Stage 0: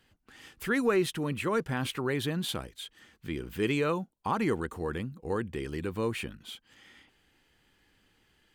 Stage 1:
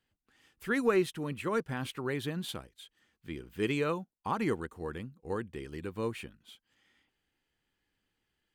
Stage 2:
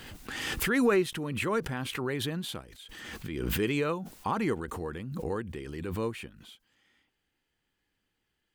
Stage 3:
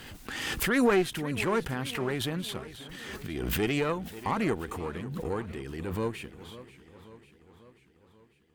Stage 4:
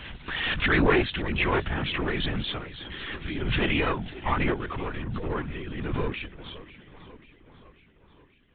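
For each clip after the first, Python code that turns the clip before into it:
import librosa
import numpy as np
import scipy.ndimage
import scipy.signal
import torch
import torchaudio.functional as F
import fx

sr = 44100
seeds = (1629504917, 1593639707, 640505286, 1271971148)

y1 = fx.upward_expand(x, sr, threshold_db=-50.0, expansion=1.5)
y2 = fx.pre_swell(y1, sr, db_per_s=30.0)
y2 = F.gain(torch.from_numpy(y2), 1.0).numpy()
y3 = fx.tube_stage(y2, sr, drive_db=19.0, bias=0.7)
y3 = fx.echo_warbled(y3, sr, ms=541, feedback_pct=59, rate_hz=2.8, cents=155, wet_db=-16.0)
y3 = F.gain(torch.from_numpy(y3), 4.5).numpy()
y4 = fx.peak_eq(y3, sr, hz=420.0, db=-7.0, octaves=2.4)
y4 = fx.lpc_vocoder(y4, sr, seeds[0], excitation='whisper', order=16)
y4 = F.gain(torch.from_numpy(y4), 7.5).numpy()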